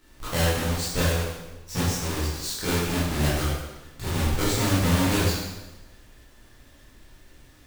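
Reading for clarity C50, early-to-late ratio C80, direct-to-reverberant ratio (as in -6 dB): -0.5 dB, 2.5 dB, -9.5 dB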